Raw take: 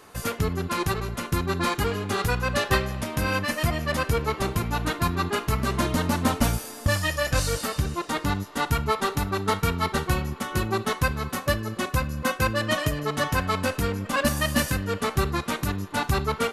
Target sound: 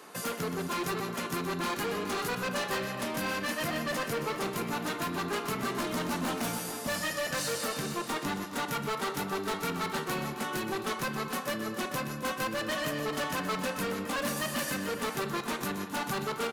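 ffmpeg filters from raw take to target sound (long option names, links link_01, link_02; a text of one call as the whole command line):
ffmpeg -i in.wav -filter_complex "[0:a]highpass=frequency=170:width=0.5412,highpass=frequency=170:width=1.3066,asplit=2[link_01][link_02];[link_02]acompressor=threshold=-31dB:ratio=6,volume=0dB[link_03];[link_01][link_03]amix=inputs=2:normalize=0,volume=23.5dB,asoftclip=hard,volume=-23.5dB,aecho=1:1:125|265|439:0.299|0.178|0.282,volume=-6dB" out.wav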